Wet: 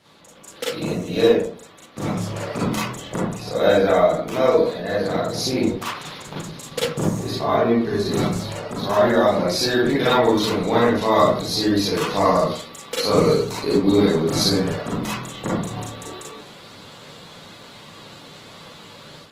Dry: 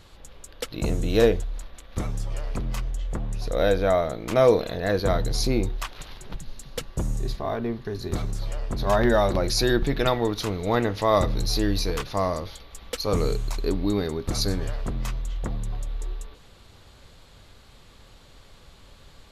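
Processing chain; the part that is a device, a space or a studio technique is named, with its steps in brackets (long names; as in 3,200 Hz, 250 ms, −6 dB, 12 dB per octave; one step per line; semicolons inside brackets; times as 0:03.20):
far-field microphone of a smart speaker (convolution reverb RT60 0.50 s, pre-delay 35 ms, DRR −6 dB; high-pass filter 140 Hz 24 dB per octave; automatic gain control gain up to 9 dB; level −3 dB; Opus 16 kbit/s 48,000 Hz)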